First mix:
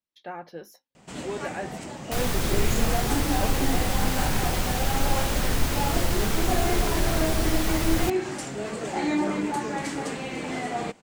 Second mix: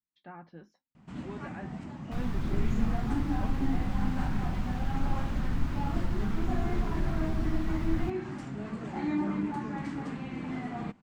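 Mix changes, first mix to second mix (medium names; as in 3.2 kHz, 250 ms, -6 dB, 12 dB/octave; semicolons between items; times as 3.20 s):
speech: add Chebyshev low-pass 5.2 kHz, order 2; second sound -4.5 dB; master: add FFT filter 240 Hz 0 dB, 490 Hz -15 dB, 1.1 kHz -6 dB, 4.7 kHz -17 dB, 9.8 kHz -26 dB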